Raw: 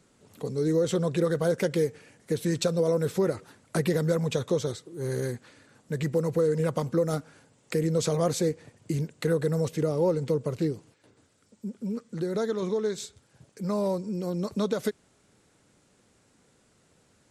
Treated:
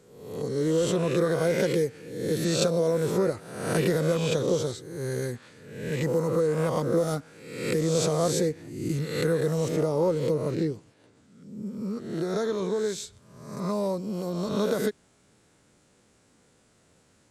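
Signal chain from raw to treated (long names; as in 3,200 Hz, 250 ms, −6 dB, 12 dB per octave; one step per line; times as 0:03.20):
peak hold with a rise ahead of every peak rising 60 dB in 0.85 s
0:10.51–0:11.66: high-shelf EQ 12,000 Hz −12 dB
level −1 dB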